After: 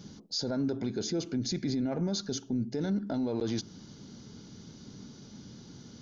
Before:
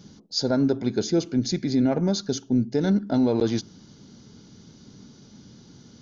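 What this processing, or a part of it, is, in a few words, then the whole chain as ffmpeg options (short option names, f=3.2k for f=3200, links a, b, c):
stacked limiters: -af "alimiter=limit=-18.5dB:level=0:latency=1:release=217,alimiter=limit=-23.5dB:level=0:latency=1:release=19"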